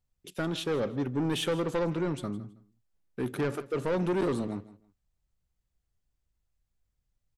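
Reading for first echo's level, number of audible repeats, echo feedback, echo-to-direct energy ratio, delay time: −17.5 dB, 2, 21%, −17.5 dB, 161 ms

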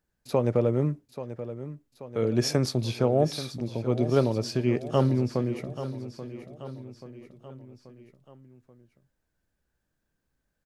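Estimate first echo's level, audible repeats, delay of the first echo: −12.5 dB, 4, 833 ms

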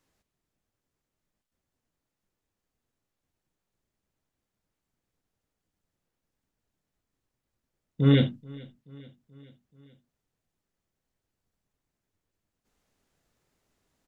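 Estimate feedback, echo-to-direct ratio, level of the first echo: 59%, −21.0 dB, −23.0 dB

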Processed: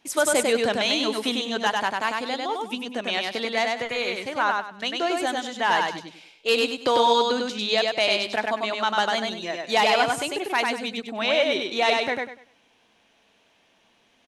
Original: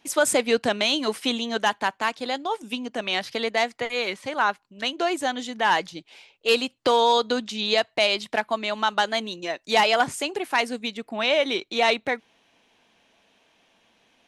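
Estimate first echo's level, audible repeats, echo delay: −3.0 dB, 3, 98 ms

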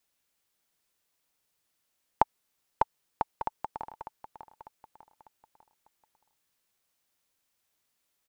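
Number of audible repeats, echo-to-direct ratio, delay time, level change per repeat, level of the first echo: 4, −10.5 dB, 598 ms, −7.5 dB, −11.5 dB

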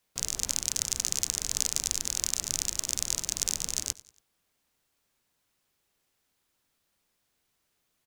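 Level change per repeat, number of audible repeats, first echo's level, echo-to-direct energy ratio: −6.5 dB, 3, −21.0 dB, −20.0 dB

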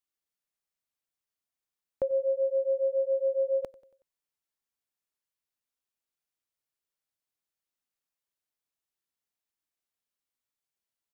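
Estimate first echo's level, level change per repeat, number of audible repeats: −21.0 dB, −6.0 dB, 3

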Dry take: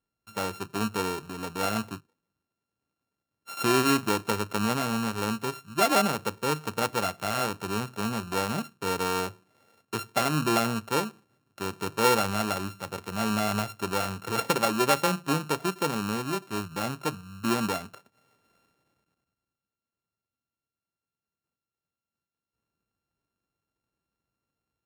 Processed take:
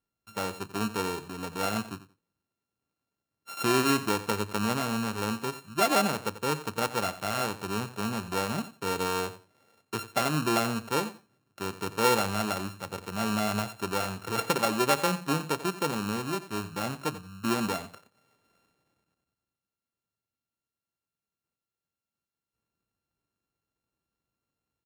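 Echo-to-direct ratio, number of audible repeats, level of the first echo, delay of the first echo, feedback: −14.5 dB, 2, −14.5 dB, 89 ms, 18%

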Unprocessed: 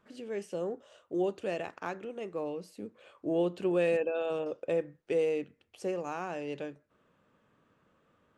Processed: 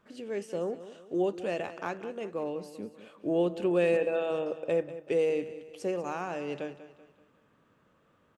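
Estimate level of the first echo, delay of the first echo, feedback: −14.0 dB, 192 ms, 43%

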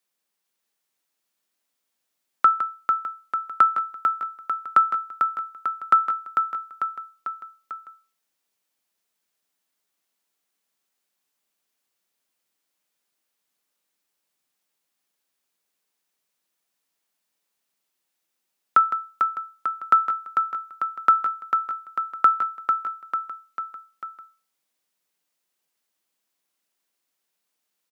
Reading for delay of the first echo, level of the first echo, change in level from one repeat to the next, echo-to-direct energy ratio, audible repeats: 446 ms, −5.5 dB, −4.5 dB, −3.5 dB, 4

